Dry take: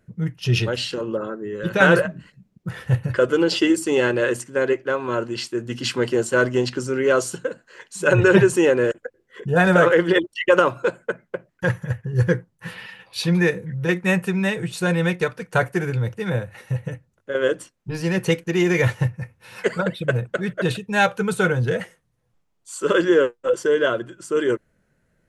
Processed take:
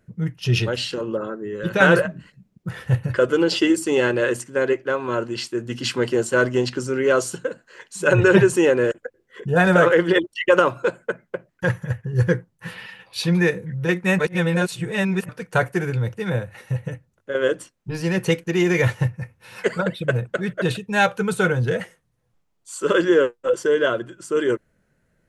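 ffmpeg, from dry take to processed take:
-filter_complex "[0:a]asplit=3[s0][s1][s2];[s0]atrim=end=14.192[s3];[s1]atrim=start=14.188:end=15.292,asetpts=PTS-STARTPTS,areverse[s4];[s2]atrim=start=15.288[s5];[s3][s4]acrossfade=d=0.004:c1=hsin:c2=hsin[s6];[s6][s5]acrossfade=d=0.004:c1=hsin:c2=hsin"

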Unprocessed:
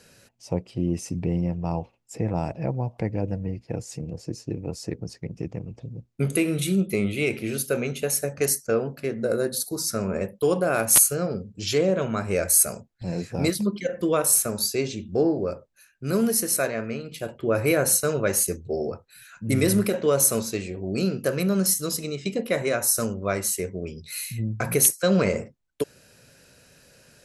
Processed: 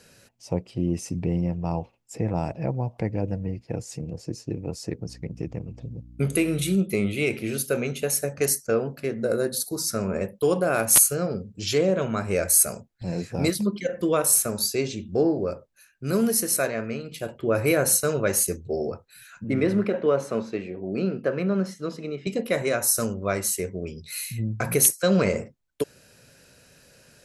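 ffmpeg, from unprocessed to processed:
-filter_complex "[0:a]asettb=1/sr,asplit=3[s0][s1][s2];[s0]atrim=end=5.064[s3];[s1]atrim=start=5.06:end=6.76,asetpts=PTS-STARTPTS,afade=t=in:d=0.004:c=qsin,afade=t=out:st=1.696:d=0.004:c=qsin,aeval=exprs='val(0)+0.00562*(sin(2*PI*60*n/s)+sin(2*PI*2*60*n/s)/2+sin(2*PI*3*60*n/s)/3+sin(2*PI*4*60*n/s)/4+sin(2*PI*5*60*n/s)/5)':c=same[s4];[s2]atrim=start=6.756[s5];[s3][s4]acrossfade=d=0.004:c1=hsin:c2=qsin[s6];[s6][s5]acrossfade=d=0.004:c1=qsin:c2=hsin,asettb=1/sr,asplit=3[s7][s8][s9];[s7]atrim=end=19.444[s10];[s8]atrim=start=19.44:end=22.27,asetpts=PTS-STARTPTS,afade=t=in:d=0.004:c=qsin,afade=t=out:st=2.826:d=0.004:c=qsin,highpass=160,lowpass=2200[s11];[s9]atrim=start=22.266[s12];[s10][s11]acrossfade=d=0.004:c1=hsin:c2=qsin[s13];[s13][s12]acrossfade=d=0.004:c1=qsin:c2=hsin"

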